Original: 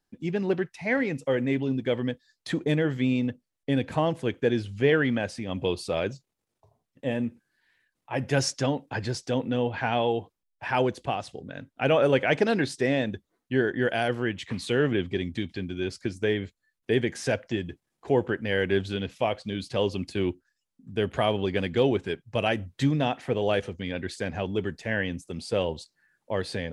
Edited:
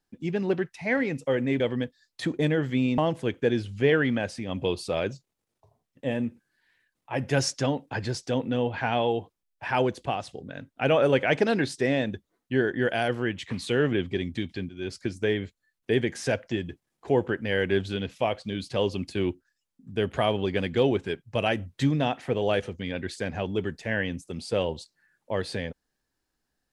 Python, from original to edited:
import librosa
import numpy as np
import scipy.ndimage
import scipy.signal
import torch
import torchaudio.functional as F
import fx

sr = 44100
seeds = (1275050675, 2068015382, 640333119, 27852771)

y = fx.edit(x, sr, fx.cut(start_s=1.6, length_s=0.27),
    fx.cut(start_s=3.25, length_s=0.73),
    fx.fade_in_from(start_s=15.69, length_s=0.25, floor_db=-15.0), tone=tone)